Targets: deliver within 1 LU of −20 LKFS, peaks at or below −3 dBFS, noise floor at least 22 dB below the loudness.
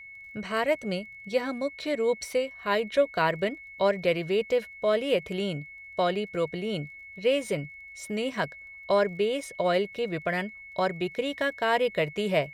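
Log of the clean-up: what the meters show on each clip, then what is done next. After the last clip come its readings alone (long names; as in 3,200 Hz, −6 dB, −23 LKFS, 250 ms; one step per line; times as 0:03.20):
crackle rate 22 per second; interfering tone 2,200 Hz; level of the tone −43 dBFS; integrated loudness −28.5 LKFS; sample peak −11.5 dBFS; target loudness −20.0 LKFS
→ click removal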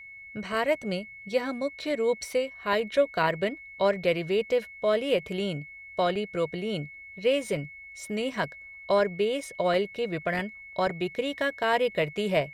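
crackle rate 0.32 per second; interfering tone 2,200 Hz; level of the tone −43 dBFS
→ notch filter 2,200 Hz, Q 30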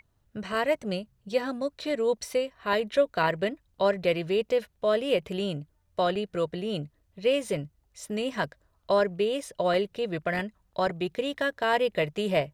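interfering tone none found; integrated loudness −28.5 LKFS; sample peak −12.0 dBFS; target loudness −20.0 LKFS
→ level +8.5 dB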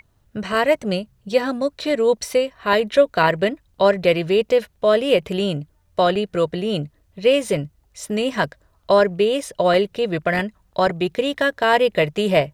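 integrated loudness −20.0 LKFS; sample peak −3.5 dBFS; background noise floor −61 dBFS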